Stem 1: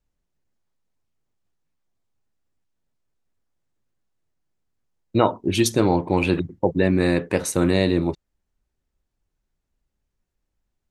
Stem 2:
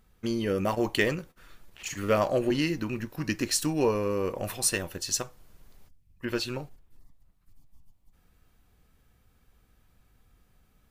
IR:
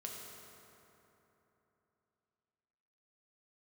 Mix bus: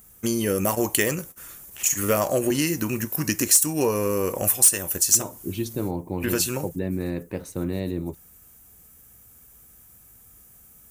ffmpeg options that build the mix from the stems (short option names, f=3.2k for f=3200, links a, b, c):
-filter_complex "[0:a]lowshelf=f=470:g=9.5,volume=-15dB[a];[1:a]highpass=54,aexciter=amount=7.7:drive=5.5:freq=6.1k,aeval=exprs='1.5*sin(PI/2*2*val(0)/1.5)':c=same,volume=-3.5dB[b];[a][b]amix=inputs=2:normalize=0,acompressor=threshold=-21dB:ratio=2"